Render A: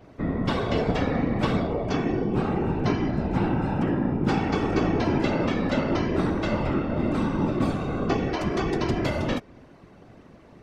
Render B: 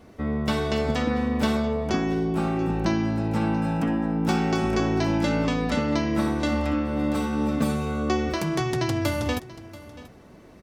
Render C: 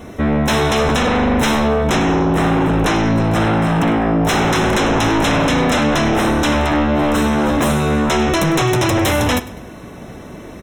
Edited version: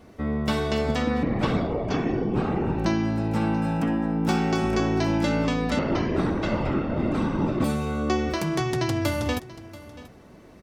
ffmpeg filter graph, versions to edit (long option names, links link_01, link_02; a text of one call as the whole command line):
ffmpeg -i take0.wav -i take1.wav -filter_complex "[0:a]asplit=2[link_01][link_02];[1:a]asplit=3[link_03][link_04][link_05];[link_03]atrim=end=1.232[link_06];[link_01]atrim=start=1.228:end=2.782[link_07];[link_04]atrim=start=2.778:end=5.792[link_08];[link_02]atrim=start=5.788:end=7.642[link_09];[link_05]atrim=start=7.638[link_10];[link_06][link_07]acrossfade=duration=0.004:curve1=hsin:curve2=hsin[link_11];[link_11][link_08]acrossfade=duration=0.004:curve1=hsin:curve2=hsin[link_12];[link_12][link_09]acrossfade=duration=0.004:curve1=hsin:curve2=hsin[link_13];[link_13][link_10]acrossfade=duration=0.004:curve1=hsin:curve2=hsin" out.wav